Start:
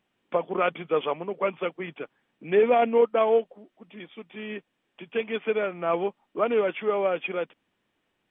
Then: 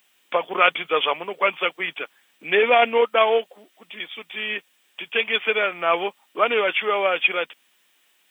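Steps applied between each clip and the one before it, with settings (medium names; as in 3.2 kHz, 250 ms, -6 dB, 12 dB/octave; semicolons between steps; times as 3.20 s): tilt EQ +5.5 dB/octave; trim +7 dB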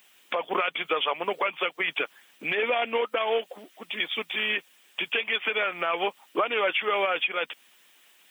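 harmonic-percussive split percussive +7 dB; compression 6:1, threshold -20 dBFS, peak gain reduction 14 dB; peak limiter -15.5 dBFS, peak gain reduction 9 dB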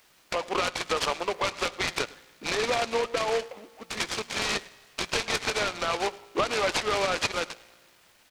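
feedback comb 58 Hz, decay 1.7 s, harmonics all, mix 40%; delay 104 ms -21 dB; delay time shaken by noise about 1.5 kHz, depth 0.073 ms; trim +3 dB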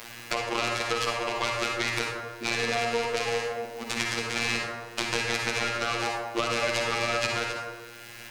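robot voice 117 Hz; reverberation RT60 0.85 s, pre-delay 37 ms, DRR 0 dB; three bands compressed up and down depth 70%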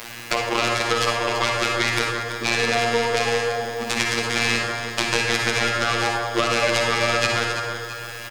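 feedback delay 334 ms, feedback 53%, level -10.5 dB; trim +6.5 dB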